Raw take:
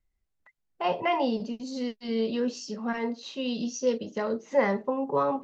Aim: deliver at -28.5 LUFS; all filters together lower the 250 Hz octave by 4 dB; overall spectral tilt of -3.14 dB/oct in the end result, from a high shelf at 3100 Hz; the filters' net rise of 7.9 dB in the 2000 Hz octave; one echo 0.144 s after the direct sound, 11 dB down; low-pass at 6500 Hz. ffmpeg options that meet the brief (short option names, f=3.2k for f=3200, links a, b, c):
-af "lowpass=6.5k,equalizer=f=250:t=o:g=-4.5,equalizer=f=2k:t=o:g=7,highshelf=f=3.1k:g=5.5,aecho=1:1:144:0.282"